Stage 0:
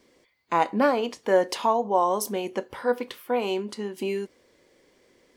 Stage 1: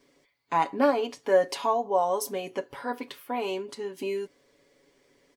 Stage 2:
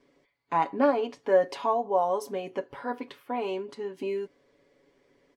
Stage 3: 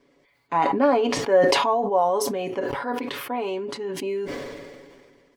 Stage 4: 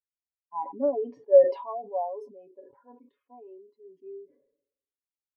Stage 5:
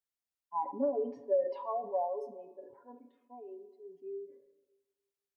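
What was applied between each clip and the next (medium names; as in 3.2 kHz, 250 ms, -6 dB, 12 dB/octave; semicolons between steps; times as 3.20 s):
comb 7.1 ms, depth 75%; trim -4.5 dB
low-pass 2.1 kHz 6 dB/octave
decay stretcher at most 30 dB/s; trim +3 dB
hum 60 Hz, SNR 32 dB; spectral contrast expander 2.5:1; trim -3.5 dB
compression 5:1, threshold -28 dBFS, peak gain reduction 15 dB; on a send at -14 dB: reverberation RT60 1.4 s, pre-delay 27 ms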